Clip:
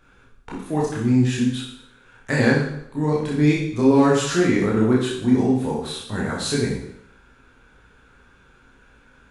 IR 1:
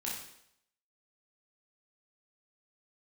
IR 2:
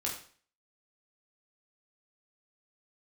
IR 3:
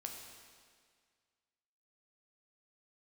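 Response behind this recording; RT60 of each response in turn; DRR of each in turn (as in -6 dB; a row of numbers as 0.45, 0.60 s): 1; 0.75, 0.45, 1.9 s; -5.5, -3.0, 1.5 dB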